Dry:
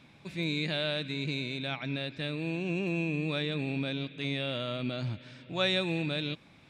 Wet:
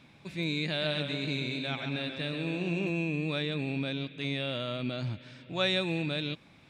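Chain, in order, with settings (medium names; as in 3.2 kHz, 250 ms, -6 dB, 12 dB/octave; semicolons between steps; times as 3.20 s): 0.68–2.90 s: modulated delay 135 ms, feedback 60%, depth 76 cents, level -7 dB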